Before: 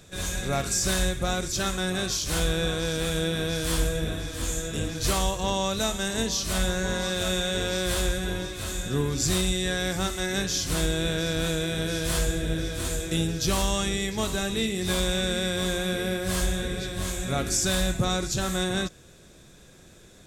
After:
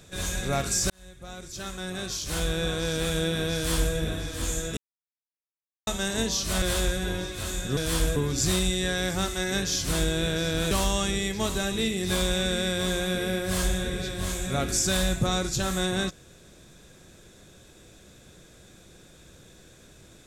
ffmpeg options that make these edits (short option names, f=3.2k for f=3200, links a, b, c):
-filter_complex "[0:a]asplit=8[a][b][c][d][e][f][g][h];[a]atrim=end=0.9,asetpts=PTS-STARTPTS,afade=t=out:st=0.896:d=0.004:c=hsin[i];[b]atrim=start=0.9:end=4.77,asetpts=PTS-STARTPTS,afade=t=in:d=2.07,afade=t=out:st=3.866:d=0.004:c=hsin[j];[c]atrim=start=4.77:end=5.87,asetpts=PTS-STARTPTS,volume=0[k];[d]atrim=start=5.87:end=6.622,asetpts=PTS-STARTPTS,afade=t=in:d=0.004:c=hsin[l];[e]atrim=start=7.828:end=8.982[m];[f]atrim=start=3.548:end=3.942[n];[g]atrim=start=8.978:end=11.532[o];[h]atrim=start=13.488[p];[i][j][k][l]concat=n=4:v=0:a=1[q];[q][m]acrossfade=d=0.004:c1=hsin:c2=hsin[r];[r][n]acrossfade=d=0.004:c1=hsin:c2=hsin[s];[s][o]acrossfade=d=0.004:c1=hsin:c2=hsin[t];[t][p]acrossfade=d=0.004:c1=hsin:c2=hsin"